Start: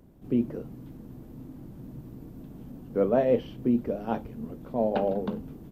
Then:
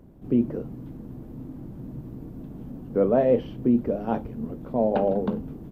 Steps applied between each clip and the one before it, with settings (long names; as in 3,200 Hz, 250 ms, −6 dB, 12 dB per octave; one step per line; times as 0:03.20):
in parallel at −2 dB: brickwall limiter −19 dBFS, peak gain reduction 8 dB
on the sum: high-shelf EQ 2,100 Hz −8.5 dB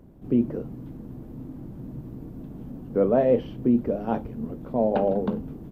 no processing that can be heard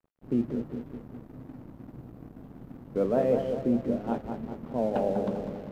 bucket-brigade delay 198 ms, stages 2,048, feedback 54%, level −6 dB
dead-zone distortion −44 dBFS
level −5 dB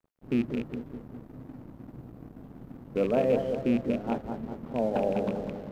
loose part that buzzes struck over −30 dBFS, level −30 dBFS